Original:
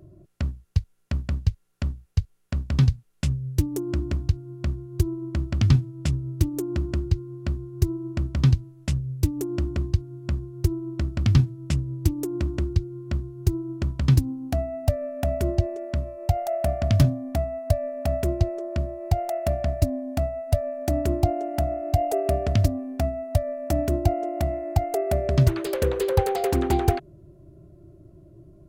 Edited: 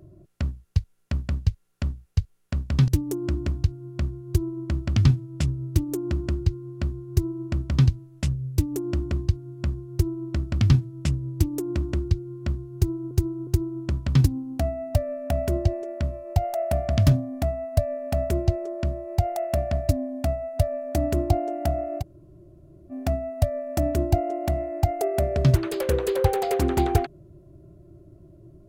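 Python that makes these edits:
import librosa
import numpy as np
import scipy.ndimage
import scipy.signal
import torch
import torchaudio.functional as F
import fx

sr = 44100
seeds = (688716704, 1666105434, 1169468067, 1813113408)

y = fx.edit(x, sr, fx.cut(start_s=2.88, length_s=0.65),
    fx.repeat(start_s=13.4, length_s=0.36, count=3),
    fx.room_tone_fill(start_s=21.94, length_s=0.9, crossfade_s=0.04), tone=tone)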